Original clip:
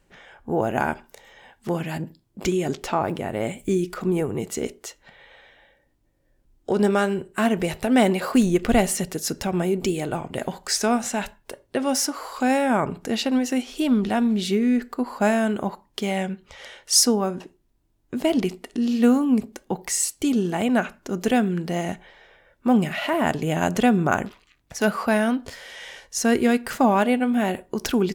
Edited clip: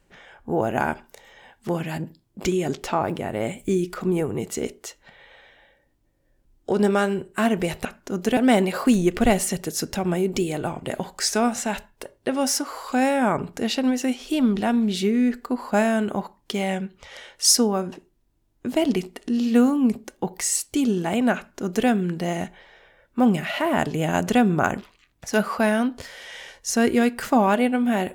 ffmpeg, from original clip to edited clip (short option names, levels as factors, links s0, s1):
-filter_complex "[0:a]asplit=3[s0][s1][s2];[s0]atrim=end=7.852[s3];[s1]atrim=start=20.838:end=21.362[s4];[s2]atrim=start=7.848[s5];[s3][s4]acrossfade=d=0.004:c1=hsin:c2=hsin[s6];[s6][s5]acrossfade=d=0.004:c1=hsin:c2=hsin"